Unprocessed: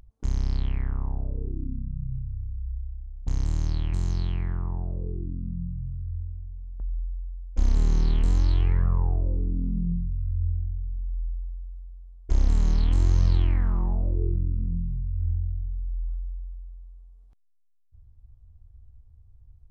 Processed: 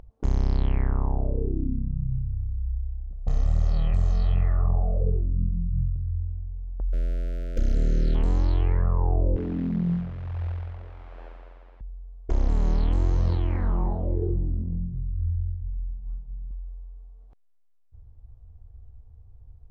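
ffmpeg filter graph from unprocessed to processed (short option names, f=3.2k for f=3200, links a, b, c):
-filter_complex "[0:a]asettb=1/sr,asplit=3[a][b][c];[a]atrim=end=3.114[d];[b]atrim=start=3.11:end=5.96,asetpts=PTS-STARTPTS,afade=t=in:d=0.004:c=qsin,afade=t=out:st=2.846:d=0.004:c=qsin,aecho=1:1:1.6:0.88,atrim=end_sample=125685,flanger=delay=19.5:depth=7.8:speed=1.4[e];[c]atrim=start=5.956[f];[d][e]acrossfade=d=0.004:c1=hsin:c2=qsin[g];[g][f]acrossfade=d=0.004:c1=qsin:c2=hsin,asettb=1/sr,asplit=3[h][i][j];[h]atrim=end=6.934[k];[i]atrim=start=6.93:end=8.15,asetpts=PTS-STARTPTS,afade=t=in:d=0.004:c=qsin,afade=t=out:st=1.216:d=0.004:c=qsin,aeval=exprs='val(0)+0.5*0.0178*sgn(val(0))':c=same,asuperstop=centerf=940:order=20:qfactor=1.5[l];[j]atrim=start=8.146[m];[k][l]acrossfade=d=0.004:c1=hsin:c2=qsin[n];[n][m]acrossfade=d=0.004:c1=qsin:c2=hsin,asettb=1/sr,asplit=3[o][p][q];[o]atrim=end=9.364[r];[p]atrim=start=9.36:end=11.81,asetpts=PTS-STARTPTS,afade=t=in:d=0.004:c=qsin,afade=t=out:st=2.446:d=0.004:c=qsin,bandreject=f=50:t=h:w=6,bandreject=f=100:t=h:w=6,bandreject=f=150:t=h:w=6,bandreject=f=200:t=h:w=6,acrusher=bits=7:mode=log:mix=0:aa=0.000001,highpass=110,lowpass=2.7k[s];[q]atrim=start=11.806[t];[r][s]acrossfade=d=0.004:c1=hsin:c2=qsin[u];[u][t]acrossfade=d=0.004:c1=qsin:c2=hsin,asettb=1/sr,asplit=3[v][w][x];[v]atrim=end=13.114[y];[w]atrim=start=13.11:end=16.51,asetpts=PTS-STARTPTS,afade=t=in:d=0.004:c=qsin,afade=t=out:st=3.396:d=0.004:c=qsin,flanger=delay=6.4:depth=7.7:regen=-52:speed=1.5:shape=sinusoidal,asplit=4[z][aa][ab][ac];[aa]adelay=307,afreqshift=-80,volume=-21dB[ad];[ab]adelay=614,afreqshift=-160,volume=-29.2dB[ae];[ac]adelay=921,afreqshift=-240,volume=-37.4dB[af];[z][ad][ae][af]amix=inputs=4:normalize=0,atrim=end_sample=149940[ag];[x]atrim=start=16.506[ah];[y][ag]acrossfade=d=0.004:c1=hsin:c2=qsin[ai];[ai][ah]acrossfade=d=0.004:c1=qsin:c2=hsin,highshelf=f=5.2k:g=-11.5,alimiter=limit=-19.5dB:level=0:latency=1:release=37,equalizer=f=560:t=o:w=1.9:g=9,volume=3.5dB"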